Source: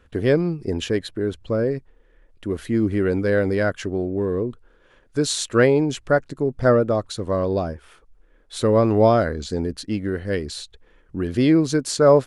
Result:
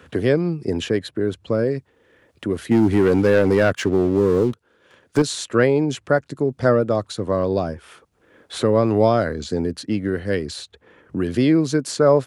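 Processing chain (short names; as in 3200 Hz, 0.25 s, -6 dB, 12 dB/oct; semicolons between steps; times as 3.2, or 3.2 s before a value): HPF 84 Hz 24 dB/oct; 2.71–5.22 sample leveller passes 2; three-band squash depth 40%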